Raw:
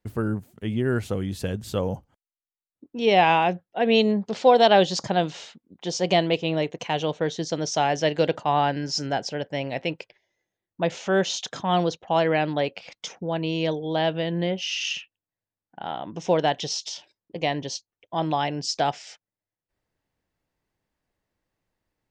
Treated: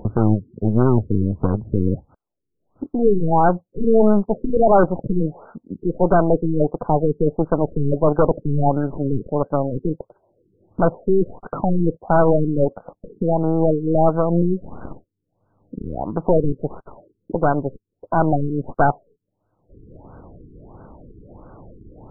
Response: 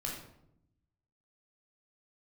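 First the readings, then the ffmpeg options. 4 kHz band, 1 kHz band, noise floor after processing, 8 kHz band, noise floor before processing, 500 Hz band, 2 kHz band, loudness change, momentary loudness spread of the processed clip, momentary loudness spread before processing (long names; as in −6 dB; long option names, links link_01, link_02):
below −40 dB, +2.0 dB, −76 dBFS, below −40 dB, below −85 dBFS, +5.0 dB, −4.5 dB, +4.5 dB, 11 LU, 13 LU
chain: -af "highshelf=frequency=2400:gain=-4.5,aeval=exprs='0.501*(cos(1*acos(clip(val(0)/0.501,-1,1)))-cos(1*PI/2))+0.00398*(cos(4*acos(clip(val(0)/0.501,-1,1)))-cos(4*PI/2))+0.0141*(cos(6*acos(clip(val(0)/0.501,-1,1)))-cos(6*PI/2))+0.0891*(cos(8*acos(clip(val(0)/0.501,-1,1)))-cos(8*PI/2))':channel_layout=same,acompressor=mode=upward:threshold=-23dB:ratio=2.5,aeval=exprs='0.266*(abs(mod(val(0)/0.266+3,4)-2)-1)':channel_layout=same,afftfilt=real='re*lt(b*sr/1024,450*pow(1600/450,0.5+0.5*sin(2*PI*1.5*pts/sr)))':imag='im*lt(b*sr/1024,450*pow(1600/450,0.5+0.5*sin(2*PI*1.5*pts/sr)))':win_size=1024:overlap=0.75,volume=7.5dB"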